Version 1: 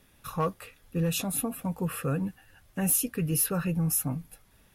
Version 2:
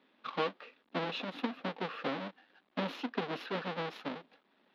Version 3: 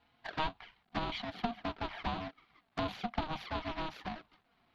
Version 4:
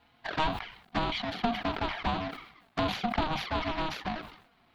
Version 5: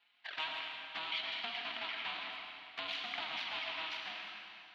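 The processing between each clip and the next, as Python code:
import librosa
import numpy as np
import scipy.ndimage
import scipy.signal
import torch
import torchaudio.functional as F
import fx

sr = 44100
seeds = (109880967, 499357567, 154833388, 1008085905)

y1 = fx.halfwave_hold(x, sr)
y1 = fx.transient(y1, sr, attack_db=6, sustain_db=1)
y1 = scipy.signal.sosfilt(scipy.signal.ellip(3, 1.0, 40, [240.0, 3800.0], 'bandpass', fs=sr, output='sos'), y1)
y1 = F.gain(torch.from_numpy(y1), -8.5).numpy()
y2 = fx.env_flanger(y1, sr, rest_ms=5.5, full_db=-32.5)
y2 = y2 * np.sin(2.0 * np.pi * 470.0 * np.arange(len(y2)) / sr)
y2 = F.gain(torch.from_numpy(y2), 4.5).numpy()
y3 = 10.0 ** (-21.5 / 20.0) * np.tanh(y2 / 10.0 ** (-21.5 / 20.0))
y3 = fx.sustainer(y3, sr, db_per_s=88.0)
y3 = F.gain(torch.from_numpy(y3), 6.5).numpy()
y4 = fx.bandpass_q(y3, sr, hz=2800.0, q=1.7)
y4 = fx.rev_freeverb(y4, sr, rt60_s=2.5, hf_ratio=0.95, predelay_ms=50, drr_db=1.0)
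y4 = F.gain(torch.from_numpy(y4), -2.0).numpy()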